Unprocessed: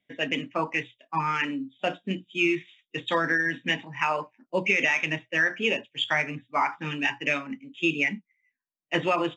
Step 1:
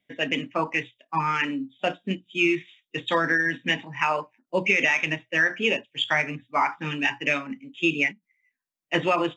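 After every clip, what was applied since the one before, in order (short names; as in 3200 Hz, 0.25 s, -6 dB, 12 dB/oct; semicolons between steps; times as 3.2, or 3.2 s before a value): ending taper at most 360 dB/s; gain +2 dB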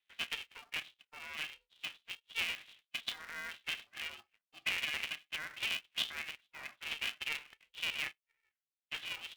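limiter -18.5 dBFS, peak gain reduction 11 dB; ladder band-pass 3200 Hz, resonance 50%; polarity switched at an audio rate 230 Hz; gain +1 dB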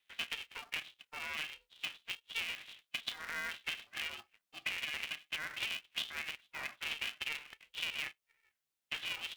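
compressor 6:1, threshold -42 dBFS, peak gain reduction 12 dB; gain +6 dB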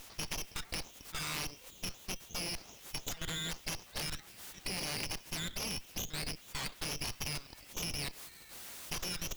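zero-crossing step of -39.5 dBFS; level quantiser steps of 10 dB; added harmonics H 3 -11 dB, 8 -10 dB, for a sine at -28.5 dBFS; gain +4.5 dB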